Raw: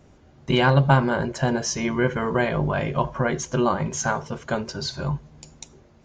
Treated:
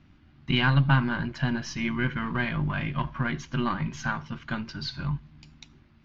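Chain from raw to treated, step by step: half-wave gain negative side -3 dB; EQ curve 310 Hz 0 dB, 440 Hz -19 dB, 1200 Hz -1 dB, 2700 Hz +3 dB, 4700 Hz -2 dB, 8800 Hz -27 dB; gain -1.5 dB

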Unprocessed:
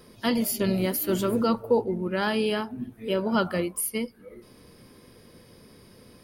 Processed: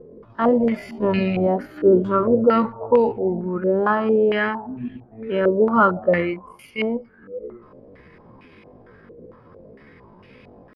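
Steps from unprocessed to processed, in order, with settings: tempo 0.58×; stepped low-pass 4.4 Hz 460–2500 Hz; gain +3.5 dB

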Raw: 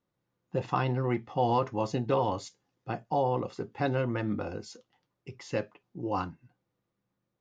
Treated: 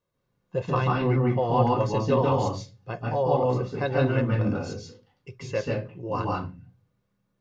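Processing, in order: 1.08–1.71 high shelf 4300 Hz -7.5 dB; reverb RT60 0.30 s, pre-delay 0.137 s, DRR -1 dB

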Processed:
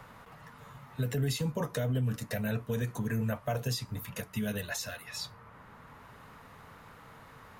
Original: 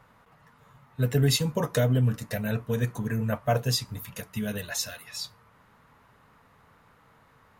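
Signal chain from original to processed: limiter -20 dBFS, peak gain reduction 7.5 dB; three-band squash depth 40%; gain -2.5 dB

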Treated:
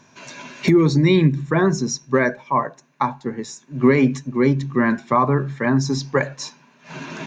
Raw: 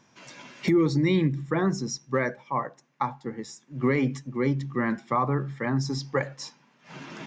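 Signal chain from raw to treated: ripple EQ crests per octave 1.5, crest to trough 6 dB; gain +7.5 dB

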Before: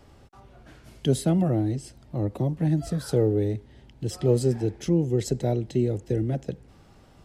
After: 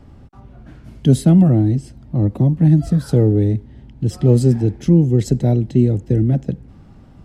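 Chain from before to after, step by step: resonant low shelf 320 Hz +6 dB, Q 1.5; mismatched tape noise reduction decoder only; gain +5 dB

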